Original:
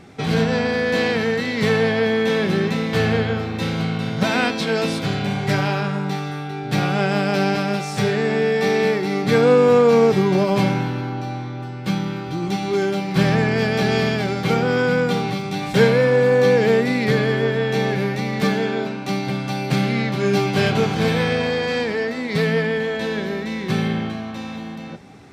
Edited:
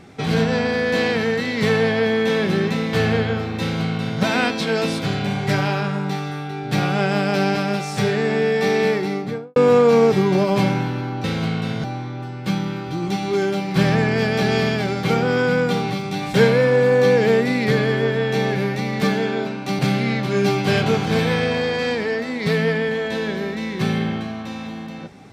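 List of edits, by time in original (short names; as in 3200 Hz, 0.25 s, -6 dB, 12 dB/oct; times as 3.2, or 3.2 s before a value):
3.61–4.21 copy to 11.24
8.97–9.56 studio fade out
19.19–19.68 cut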